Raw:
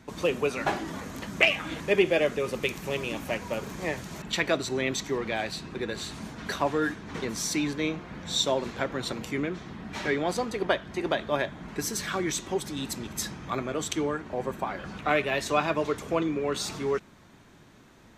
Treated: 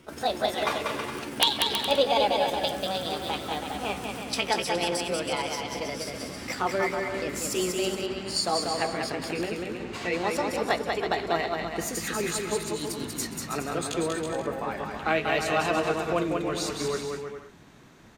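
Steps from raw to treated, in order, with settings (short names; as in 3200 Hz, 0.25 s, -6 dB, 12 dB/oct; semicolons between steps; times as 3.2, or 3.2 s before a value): gliding pitch shift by +6.5 st ending unshifted; wrapped overs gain 8 dB; bouncing-ball echo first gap 0.19 s, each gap 0.7×, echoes 5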